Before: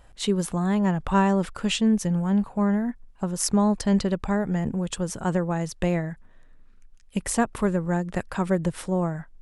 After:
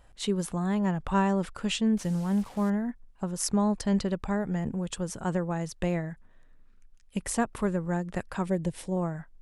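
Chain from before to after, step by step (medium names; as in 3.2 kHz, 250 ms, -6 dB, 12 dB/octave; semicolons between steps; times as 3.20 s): 1.97–2.70 s: one-bit delta coder 64 kbps, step -38.5 dBFS; 8.46–8.97 s: peaking EQ 1.3 kHz -12.5 dB 0.62 oct; trim -4.5 dB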